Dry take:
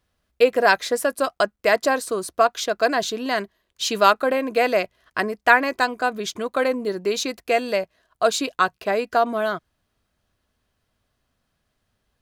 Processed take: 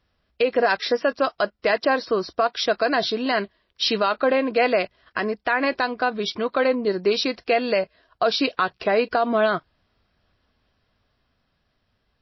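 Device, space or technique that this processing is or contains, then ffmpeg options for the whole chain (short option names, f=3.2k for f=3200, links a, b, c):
low-bitrate web radio: -af "dynaudnorm=f=570:g=7:m=4dB,alimiter=limit=-13dB:level=0:latency=1:release=91,volume=3dB" -ar 16000 -c:a libmp3lame -b:a 24k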